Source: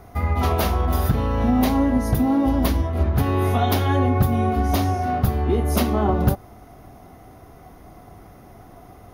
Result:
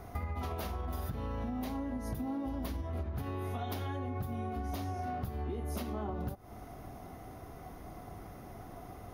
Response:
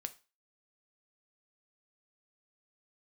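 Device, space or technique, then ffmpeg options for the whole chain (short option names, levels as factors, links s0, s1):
serial compression, leveller first: -af "acompressor=threshold=0.0562:ratio=2,acompressor=threshold=0.0251:ratio=5,volume=0.708"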